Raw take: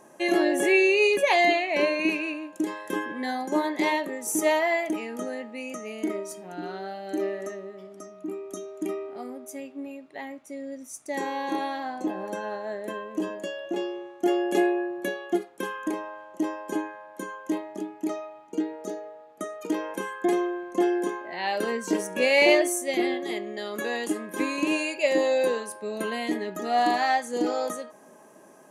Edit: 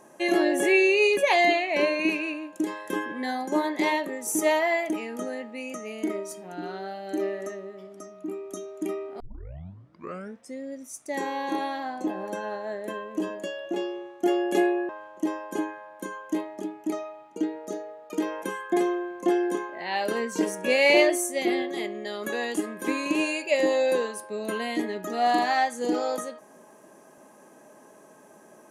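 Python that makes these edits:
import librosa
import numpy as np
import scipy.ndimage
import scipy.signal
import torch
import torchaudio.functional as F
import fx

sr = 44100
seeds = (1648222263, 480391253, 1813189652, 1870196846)

y = fx.edit(x, sr, fx.tape_start(start_s=9.2, length_s=1.42),
    fx.cut(start_s=14.89, length_s=1.17),
    fx.cut(start_s=19.27, length_s=0.35), tone=tone)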